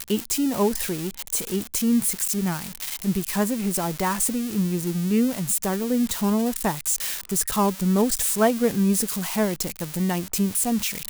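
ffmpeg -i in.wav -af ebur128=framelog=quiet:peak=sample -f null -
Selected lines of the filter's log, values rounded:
Integrated loudness:
  I:         -23.4 LUFS
  Threshold: -33.4 LUFS
Loudness range:
  LRA:         2.2 LU
  Threshold: -43.3 LUFS
  LRA low:   -24.4 LUFS
  LRA high:  -22.2 LUFS
Sample peak:
  Peak:       -7.3 dBFS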